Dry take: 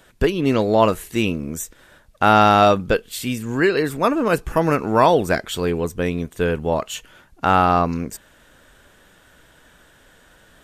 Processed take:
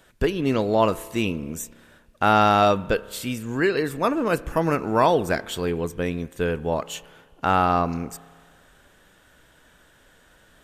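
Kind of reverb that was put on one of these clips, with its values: spring tank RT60 1.7 s, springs 30 ms, chirp 60 ms, DRR 18.5 dB; trim -4 dB

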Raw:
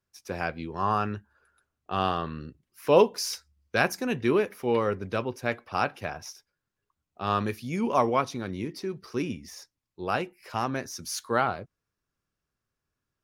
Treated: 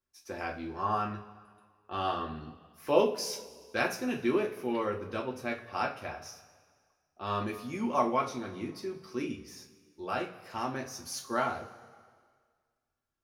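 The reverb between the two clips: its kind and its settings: two-slope reverb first 0.28 s, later 1.8 s, from -18 dB, DRR -0.5 dB; trim -8 dB

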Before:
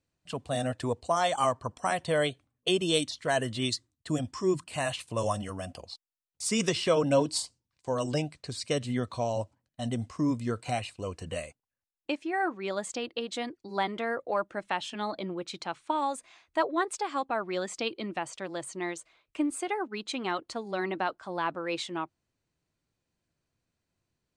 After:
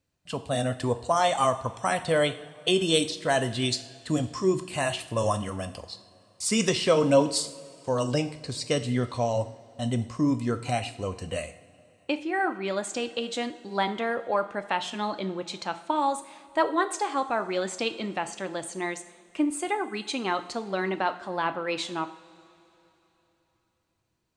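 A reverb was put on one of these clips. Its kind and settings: two-slope reverb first 0.57 s, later 3.5 s, from -18 dB, DRR 9 dB; trim +3 dB

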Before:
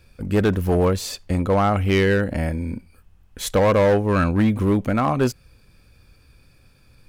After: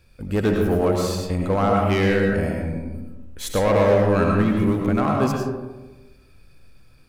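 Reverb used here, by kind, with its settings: algorithmic reverb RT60 1.2 s, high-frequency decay 0.35×, pre-delay 60 ms, DRR 0 dB; trim -3.5 dB

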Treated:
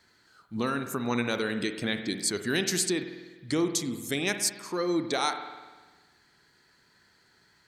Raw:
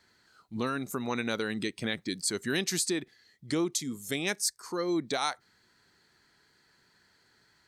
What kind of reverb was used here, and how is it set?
spring tank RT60 1.3 s, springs 50 ms, chirp 50 ms, DRR 7.5 dB; trim +2 dB

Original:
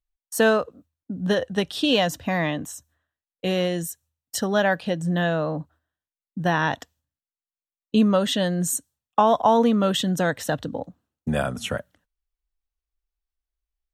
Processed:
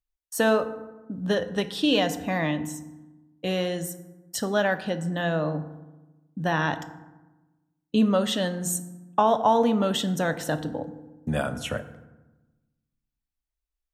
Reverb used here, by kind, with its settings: FDN reverb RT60 1.1 s, low-frequency decay 1.4×, high-frequency decay 0.5×, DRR 9.5 dB; trim -3 dB

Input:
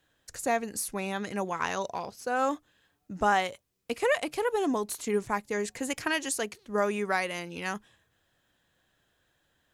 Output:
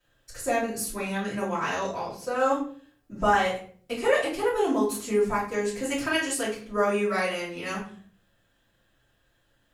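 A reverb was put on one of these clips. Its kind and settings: simulated room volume 47 m³, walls mixed, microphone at 2.7 m; trim -10 dB

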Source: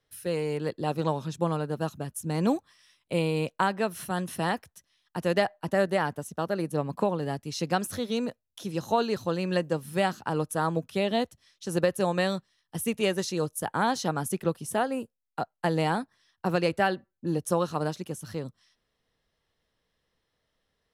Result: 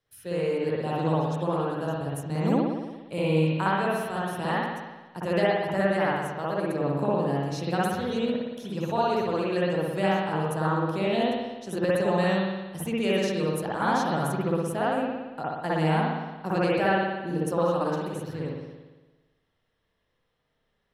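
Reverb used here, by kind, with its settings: spring tank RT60 1.2 s, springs 57 ms, chirp 65 ms, DRR -7 dB; trim -5.5 dB

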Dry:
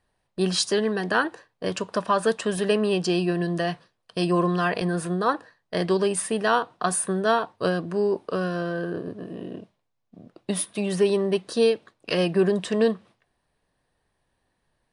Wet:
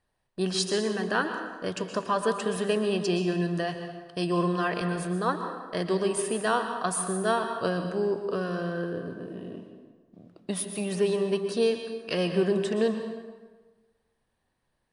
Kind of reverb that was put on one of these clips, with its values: plate-style reverb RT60 1.3 s, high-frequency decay 0.7×, pre-delay 105 ms, DRR 6.5 dB; trim -4.5 dB

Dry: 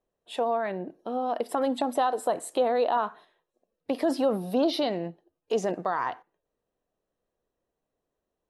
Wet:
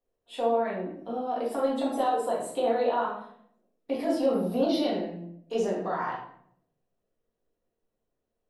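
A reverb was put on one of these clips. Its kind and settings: simulated room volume 120 m³, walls mixed, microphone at 1.8 m; trim -9 dB

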